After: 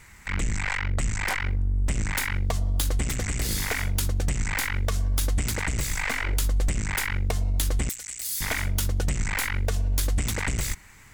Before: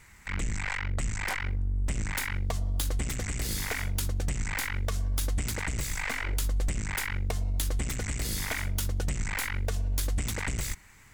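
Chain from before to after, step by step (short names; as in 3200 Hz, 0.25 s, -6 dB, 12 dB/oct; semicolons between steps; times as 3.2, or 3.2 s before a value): 7.89–8.41 pre-emphasis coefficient 0.97; gain +4.5 dB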